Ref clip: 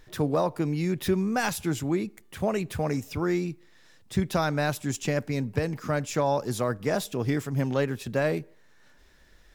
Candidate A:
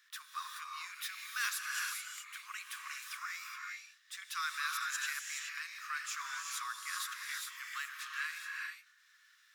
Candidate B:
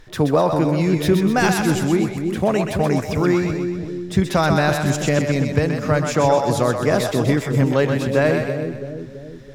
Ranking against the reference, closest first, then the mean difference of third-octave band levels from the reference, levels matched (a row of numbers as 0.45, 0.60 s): B, A; 6.5, 24.0 dB